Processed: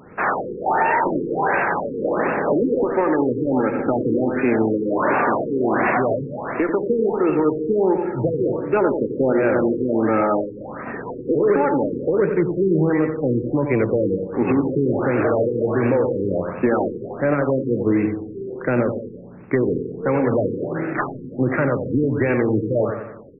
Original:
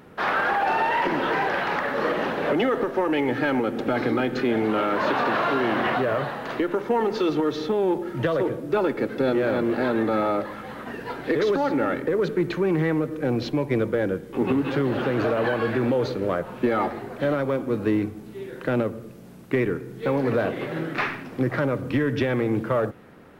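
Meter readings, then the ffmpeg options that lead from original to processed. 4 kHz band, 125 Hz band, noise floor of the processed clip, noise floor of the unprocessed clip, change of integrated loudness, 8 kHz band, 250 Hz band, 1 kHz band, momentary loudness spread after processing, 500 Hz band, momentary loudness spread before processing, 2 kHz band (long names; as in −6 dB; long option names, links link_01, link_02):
below −25 dB, +4.0 dB, −35 dBFS, −41 dBFS, +4.0 dB, can't be measured, +4.5 dB, +2.5 dB, 6 LU, +4.5 dB, 5 LU, +1.0 dB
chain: -filter_complex "[0:a]aemphasis=mode=production:type=50fm,asplit=2[link_01][link_02];[link_02]aecho=0:1:90|180|270|360|450|540:0.447|0.228|0.116|0.0593|0.0302|0.0154[link_03];[link_01][link_03]amix=inputs=2:normalize=0,afftfilt=real='re*lt(b*sr/1024,490*pow(2800/490,0.5+0.5*sin(2*PI*1.4*pts/sr)))':imag='im*lt(b*sr/1024,490*pow(2800/490,0.5+0.5*sin(2*PI*1.4*pts/sr)))':win_size=1024:overlap=0.75,volume=4dB"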